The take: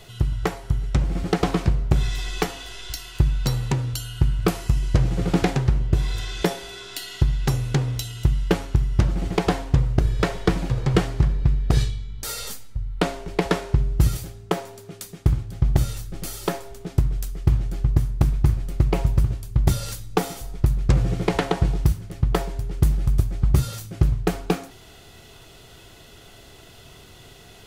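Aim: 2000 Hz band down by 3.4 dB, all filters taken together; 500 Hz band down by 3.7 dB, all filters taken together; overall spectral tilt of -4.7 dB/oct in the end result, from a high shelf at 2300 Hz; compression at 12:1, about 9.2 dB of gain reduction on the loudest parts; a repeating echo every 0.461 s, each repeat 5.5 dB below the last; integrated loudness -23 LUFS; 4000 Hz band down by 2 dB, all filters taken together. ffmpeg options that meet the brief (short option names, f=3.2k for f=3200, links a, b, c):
-af "equalizer=f=500:t=o:g=-5,equalizer=f=2k:t=o:g=-5.5,highshelf=f=2.3k:g=6,equalizer=f=4k:t=o:g=-6.5,acompressor=threshold=-23dB:ratio=12,aecho=1:1:461|922|1383|1844|2305|2766|3227:0.531|0.281|0.149|0.079|0.0419|0.0222|0.0118,volume=6.5dB"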